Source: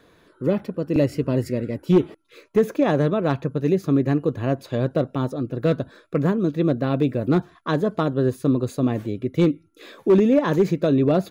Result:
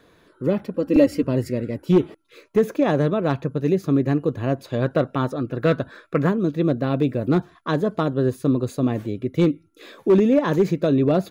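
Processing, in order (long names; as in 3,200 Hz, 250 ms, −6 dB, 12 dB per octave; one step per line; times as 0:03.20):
0:00.74–0:01.23: comb filter 3.7 ms, depth 98%
0:04.82–0:06.29: parametric band 1,600 Hz +7.5 dB 1.9 octaves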